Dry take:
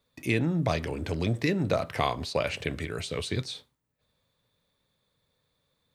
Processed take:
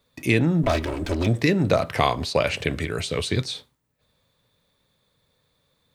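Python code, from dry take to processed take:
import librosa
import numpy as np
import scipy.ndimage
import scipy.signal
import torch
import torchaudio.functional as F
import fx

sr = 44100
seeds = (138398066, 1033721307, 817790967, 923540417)

y = fx.lower_of_two(x, sr, delay_ms=3.1, at=(0.63, 1.27))
y = F.gain(torch.from_numpy(y), 6.5).numpy()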